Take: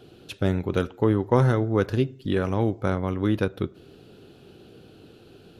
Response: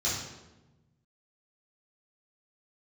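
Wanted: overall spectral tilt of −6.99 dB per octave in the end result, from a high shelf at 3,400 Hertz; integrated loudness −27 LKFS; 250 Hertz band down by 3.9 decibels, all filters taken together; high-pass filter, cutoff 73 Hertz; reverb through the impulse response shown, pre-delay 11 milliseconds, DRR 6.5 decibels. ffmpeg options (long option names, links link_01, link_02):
-filter_complex "[0:a]highpass=73,equalizer=frequency=250:width_type=o:gain=-5.5,highshelf=frequency=3400:gain=-5.5,asplit=2[link_01][link_02];[1:a]atrim=start_sample=2205,adelay=11[link_03];[link_02][link_03]afir=irnorm=-1:irlink=0,volume=-14.5dB[link_04];[link_01][link_04]amix=inputs=2:normalize=0,volume=-3dB"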